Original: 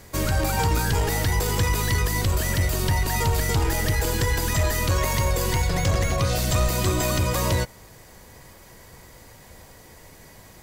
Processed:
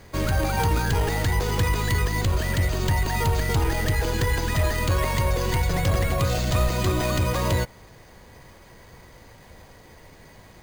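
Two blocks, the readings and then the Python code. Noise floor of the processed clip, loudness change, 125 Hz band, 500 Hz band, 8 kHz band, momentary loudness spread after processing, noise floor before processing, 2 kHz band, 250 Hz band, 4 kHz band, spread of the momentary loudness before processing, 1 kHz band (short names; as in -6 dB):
-49 dBFS, -0.5 dB, 0.0 dB, 0.0 dB, -6.0 dB, 1 LU, -48 dBFS, -0.5 dB, 0.0 dB, -2.0 dB, 1 LU, 0.0 dB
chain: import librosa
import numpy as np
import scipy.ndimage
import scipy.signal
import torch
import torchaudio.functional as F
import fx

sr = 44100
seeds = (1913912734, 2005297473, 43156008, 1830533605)

y = np.repeat(scipy.signal.resample_poly(x, 1, 4), 4)[:len(x)]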